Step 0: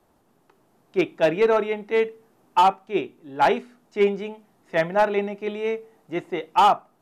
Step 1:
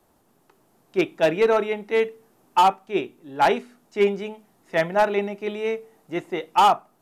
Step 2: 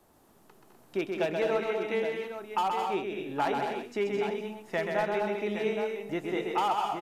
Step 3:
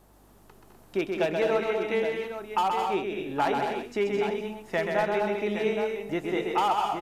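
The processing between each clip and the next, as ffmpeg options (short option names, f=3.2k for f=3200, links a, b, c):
-af "highshelf=f=5.6k:g=7"
-af "acompressor=threshold=-31dB:ratio=3,aecho=1:1:130|207|221|250|339|817:0.596|0.447|0.335|0.335|0.211|0.376"
-af "aeval=exprs='val(0)+0.000794*(sin(2*PI*50*n/s)+sin(2*PI*2*50*n/s)/2+sin(2*PI*3*50*n/s)/3+sin(2*PI*4*50*n/s)/4+sin(2*PI*5*50*n/s)/5)':c=same,volume=3dB"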